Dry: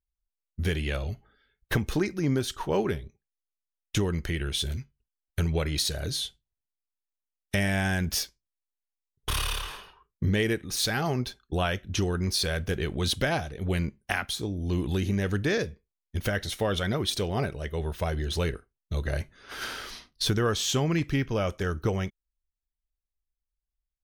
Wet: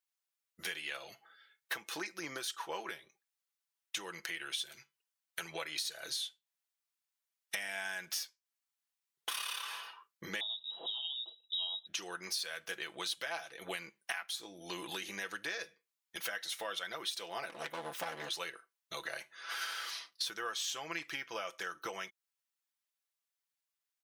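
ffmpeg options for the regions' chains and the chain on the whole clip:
-filter_complex "[0:a]asettb=1/sr,asplit=3[s0][s1][s2];[s0]atrim=end=10.404[s3];[s1]atrim=start=10.4:end=11.87,asetpts=PTS-STARTPTS,afade=t=in:d=0.004:c=qsin,afade=t=out:st=1.466:d=0.004:c=qsin,asuperstop=centerf=1800:order=12:qfactor=0.89,equalizer=f=330:t=o:w=1.1:g=-7.5,lowpass=f=3300:t=q:w=0.5098,lowpass=f=3300:t=q:w=0.6013,lowpass=f=3300:t=q:w=0.9,lowpass=f=3300:t=q:w=2.563,afreqshift=-3900[s4];[s2]atrim=start=11.866[s5];[s3][s4]acrossfade=d=0.004:c1=hsin:c2=qsin[s6];[s6][s5]acrossfade=d=0.004:c1=qsin:c2=hsin,asettb=1/sr,asplit=3[s7][s8][s9];[s7]atrim=end=17.494[s10];[s8]atrim=start=17.49:end=18.29,asetpts=PTS-STARTPTS,afade=t=in:d=0.004:c=qsin,afade=t=out:st=0.796:d=0.004:c=qsin,lowshelf=f=260:g=11.5,aeval=exprs='abs(val(0))':c=same[s11];[s9]atrim=start=18.286[s12];[s10][s11]acrossfade=d=0.004:c1=hsin:c2=qsin[s13];[s13][s12]acrossfade=d=0.004:c1=qsin:c2=hsin,highpass=910,acompressor=threshold=0.00631:ratio=4,aecho=1:1:6:0.56,volume=1.68"

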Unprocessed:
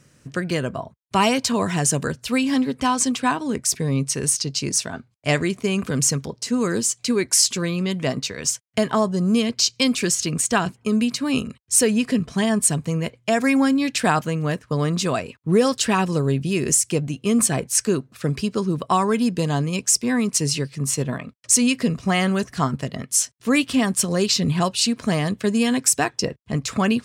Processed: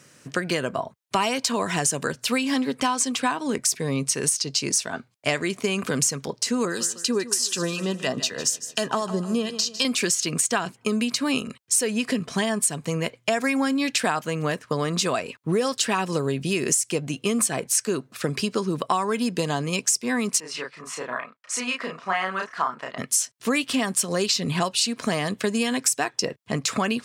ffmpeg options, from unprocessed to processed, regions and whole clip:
-filter_complex "[0:a]asettb=1/sr,asplit=3[s0][s1][s2];[s0]atrim=end=6.654[s3];[s1]atrim=start=6.65:end=9.85,asetpts=PTS-STARTPTS,afade=t=in:d=0.004:c=qsin,afade=t=out:st=3.196:d=0.004:c=qsin,acrossover=split=1300[s4][s5];[s4]aeval=exprs='val(0)*(1-0.7/2+0.7/2*cos(2*PI*4*n/s))':c=same[s6];[s5]aeval=exprs='val(0)*(1-0.7/2-0.7/2*cos(2*PI*4*n/s))':c=same[s7];[s6][s7]amix=inputs=2:normalize=0,asuperstop=centerf=2200:order=12:qfactor=6.7,aecho=1:1:152|304|456|608:0.168|0.0705|0.0296|0.0124,atrim=end_sample=141120[s8];[s2]atrim=start=9.846[s9];[s3][s8]acrossfade=d=0.004:c1=hsin:c2=qsin[s10];[s10][s9]acrossfade=d=0.004:c1=qsin:c2=hsin,asettb=1/sr,asplit=3[s11][s12][s13];[s11]atrim=end=20.404[s14];[s12]atrim=start=20.4:end=22.98,asetpts=PTS-STARTPTS,afade=t=in:d=0.004:c=qsin,afade=t=out:st=2.576:d=0.004:c=qsin,bandpass=f=1200:t=q:w=1.5,asplit=2[s15][s16];[s16]adelay=32,volume=0.794[s17];[s15][s17]amix=inputs=2:normalize=0,atrim=end_sample=113778[s18];[s13]atrim=start=22.976[s19];[s14][s18]acrossfade=d=0.004:c1=hsin:c2=qsin[s20];[s20][s19]acrossfade=d=0.004:c1=qsin:c2=hsin,highpass=100,lowshelf=f=240:g=-11.5,acompressor=threshold=0.0447:ratio=4,volume=2"

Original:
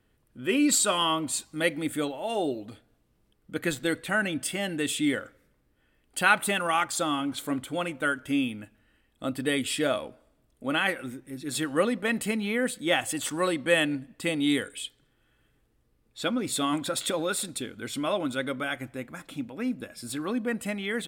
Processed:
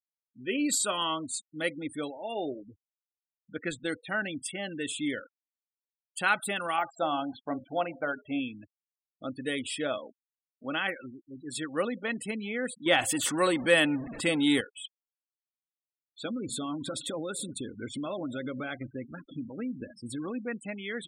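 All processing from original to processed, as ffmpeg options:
-filter_complex "[0:a]asettb=1/sr,asplit=3[s0][s1][s2];[s0]atrim=end=6.784[s3];[s1]atrim=start=6.78:end=8.4,asetpts=PTS-STARTPTS,afade=t=in:d=0.004:c=qsin,afade=t=out:st=1.616:d=0.004:c=qsin,deesser=0.95,equalizer=f=710:t=o:w=0.67:g=12,bandreject=f=60:t=h:w=6,bandreject=f=120:t=h:w=6,bandreject=f=180:t=h:w=6,bandreject=f=240:t=h:w=6,bandreject=f=300:t=h:w=6,bandreject=f=360:t=h:w=6,bandreject=f=420:t=h:w=6,bandreject=f=480:t=h:w=6,bandreject=f=540:t=h:w=6[s4];[s2]atrim=start=8.396[s5];[s3][s4]acrossfade=d=0.004:c1=hsin:c2=qsin[s6];[s6][s5]acrossfade=d=0.004:c1=qsin:c2=hsin,asettb=1/sr,asplit=3[s7][s8][s9];[s7]atrim=end=12.864[s10];[s8]atrim=start=12.86:end=14.61,asetpts=PTS-STARTPTS,afade=t=in:d=0.004:c=qsin,afade=t=out:st=1.746:d=0.004:c=qsin,aeval=exprs='val(0)+0.5*0.02*sgn(val(0))':c=same,acontrast=26[s11];[s9]atrim=start=14.606[s12];[s10][s11]acrossfade=d=0.004:c1=hsin:c2=qsin[s13];[s13][s12]acrossfade=d=0.004:c1=qsin:c2=hsin,asettb=1/sr,asplit=3[s14][s15][s16];[s14]atrim=end=16.254[s17];[s15]atrim=start=16.25:end=20.31,asetpts=PTS-STARTPTS,afade=t=in:d=0.004:c=qsin,afade=t=out:st=4.056:d=0.004:c=qsin,lowshelf=f=490:g=9,acompressor=threshold=0.0562:ratio=5:attack=3.2:release=140:knee=1:detection=peak,aecho=1:1:211:0.1,atrim=end_sample=179046[s18];[s16]atrim=start=20.306[s19];[s17][s18]acrossfade=d=0.004:c1=hsin:c2=qsin[s20];[s20][s19]acrossfade=d=0.004:c1=qsin:c2=hsin,afftfilt=real='re*gte(hypot(re,im),0.0224)':imag='im*gte(hypot(re,im),0.0224)':win_size=1024:overlap=0.75,lowshelf=f=220:g=-4,volume=0.596"

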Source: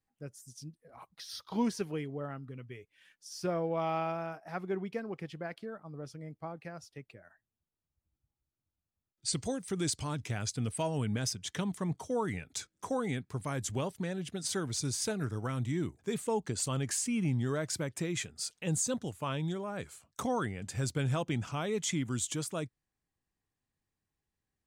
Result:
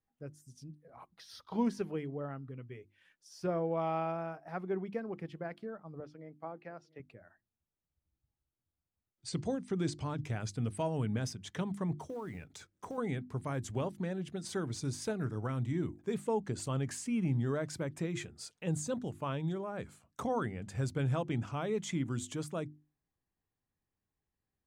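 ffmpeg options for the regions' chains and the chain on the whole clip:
-filter_complex "[0:a]asettb=1/sr,asplit=3[s0][s1][s2];[s0]atrim=end=6.004[s3];[s1]atrim=start=6:end=7,asetpts=PTS-STARTPTS,afade=t=in:d=0.004:c=qsin,afade=t=out:st=0.996:d=0.004:c=qsin,highpass=240,lowpass=4200,aecho=1:1:698:0.075,atrim=end_sample=44100[s4];[s2]atrim=start=6.996[s5];[s3][s4]acrossfade=d=0.004:c1=hsin:c2=qsin[s6];[s6][s5]acrossfade=d=0.004:c1=qsin:c2=hsin,asettb=1/sr,asplit=3[s7][s8][s9];[s7]atrim=end=9.294[s10];[s8]atrim=start=9.29:end=10.24,asetpts=PTS-STARTPTS,afade=t=in:d=0.004:c=qsin,afade=t=out:st=0.946:d=0.004:c=qsin,highpass=100,lowpass=6900,lowshelf=f=210:g=4[s11];[s9]atrim=start=10.236[s12];[s10][s11]acrossfade=d=0.004:c1=hsin:c2=qsin[s13];[s13][s12]acrossfade=d=0.004:c1=qsin:c2=hsin,asettb=1/sr,asplit=3[s14][s15][s16];[s14]atrim=end=11.974[s17];[s15]atrim=start=11.97:end=12.98,asetpts=PTS-STARTPTS,afade=t=in:d=0.004:c=qsin,afade=t=out:st=1.006:d=0.004:c=qsin,acompressor=threshold=0.0158:ratio=12:attack=3.2:release=140:knee=1:detection=peak,acrusher=bits=5:mode=log:mix=0:aa=0.000001[s18];[s16]atrim=start=12.976[s19];[s17][s18]acrossfade=d=0.004:c1=hsin:c2=qsin[s20];[s20][s19]acrossfade=d=0.004:c1=qsin:c2=hsin,highshelf=f=2500:g=-11,bandreject=f=50:t=h:w=6,bandreject=f=100:t=h:w=6,bandreject=f=150:t=h:w=6,bandreject=f=200:t=h:w=6,bandreject=f=250:t=h:w=6,bandreject=f=300:t=h:w=6,bandreject=f=350:t=h:w=6"

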